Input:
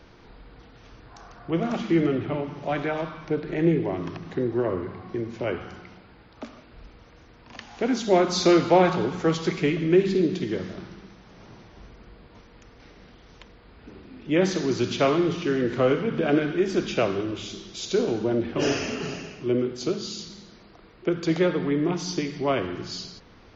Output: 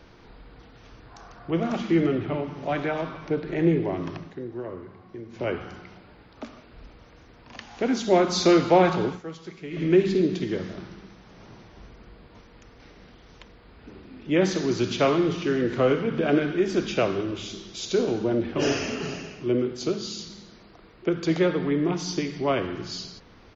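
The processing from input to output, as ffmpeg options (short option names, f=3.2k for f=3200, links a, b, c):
-filter_complex "[0:a]asplit=2[a][b];[b]afade=t=in:st=2.11:d=0.01,afade=t=out:st=2.69:d=0.01,aecho=0:1:470|940|1410|1880|2350|2820|3290|3760|4230|4700|5170|5640:0.133352|0.106682|0.0853454|0.0682763|0.054621|0.0436968|0.0349575|0.027966|0.0223728|0.0178982|0.0143186|0.0114549[c];[a][c]amix=inputs=2:normalize=0,asplit=5[d][e][f][g][h];[d]atrim=end=4.33,asetpts=PTS-STARTPTS,afade=t=out:st=4.19:d=0.14:silence=0.334965[i];[e]atrim=start=4.33:end=5.29,asetpts=PTS-STARTPTS,volume=-9.5dB[j];[f]atrim=start=5.29:end=9.21,asetpts=PTS-STARTPTS,afade=t=in:d=0.14:silence=0.334965,afade=t=out:st=3.8:d=0.12:silence=0.188365[k];[g]atrim=start=9.21:end=9.7,asetpts=PTS-STARTPTS,volume=-14.5dB[l];[h]atrim=start=9.7,asetpts=PTS-STARTPTS,afade=t=in:d=0.12:silence=0.188365[m];[i][j][k][l][m]concat=n=5:v=0:a=1"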